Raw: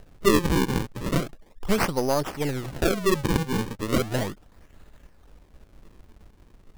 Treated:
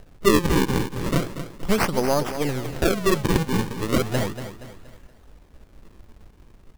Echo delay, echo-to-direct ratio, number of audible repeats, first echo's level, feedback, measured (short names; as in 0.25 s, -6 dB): 0.236 s, -10.0 dB, 4, -11.0 dB, 42%